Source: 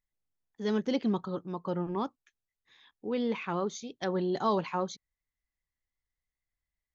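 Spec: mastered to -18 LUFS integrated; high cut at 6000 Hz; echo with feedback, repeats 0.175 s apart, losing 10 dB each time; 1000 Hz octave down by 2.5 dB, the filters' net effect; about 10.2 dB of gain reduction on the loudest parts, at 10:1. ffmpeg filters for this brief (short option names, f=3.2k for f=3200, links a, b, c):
-af "lowpass=6k,equalizer=f=1k:t=o:g=-3,acompressor=threshold=-35dB:ratio=10,aecho=1:1:175|350|525|700:0.316|0.101|0.0324|0.0104,volume=22.5dB"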